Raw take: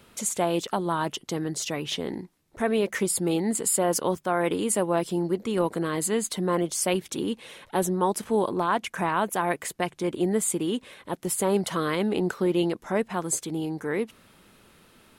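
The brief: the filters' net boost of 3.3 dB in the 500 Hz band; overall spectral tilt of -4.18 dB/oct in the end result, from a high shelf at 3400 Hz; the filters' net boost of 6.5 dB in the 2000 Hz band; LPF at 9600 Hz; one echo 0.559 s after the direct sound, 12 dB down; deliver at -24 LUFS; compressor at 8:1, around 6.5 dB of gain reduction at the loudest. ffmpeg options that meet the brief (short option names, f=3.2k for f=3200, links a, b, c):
-af "lowpass=9.6k,equalizer=f=500:t=o:g=4,equalizer=f=2k:t=o:g=9,highshelf=f=3.4k:g=-4,acompressor=threshold=-23dB:ratio=8,aecho=1:1:559:0.251,volume=5dB"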